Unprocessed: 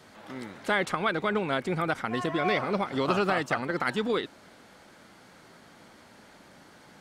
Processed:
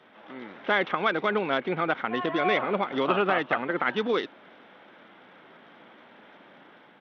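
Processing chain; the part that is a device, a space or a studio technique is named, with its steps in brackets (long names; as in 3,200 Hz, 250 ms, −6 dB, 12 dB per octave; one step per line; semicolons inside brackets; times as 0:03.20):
Bluetooth headset (high-pass filter 230 Hz 12 dB per octave; automatic gain control gain up to 4 dB; downsampling to 8,000 Hz; level −1.5 dB; SBC 64 kbit/s 32,000 Hz)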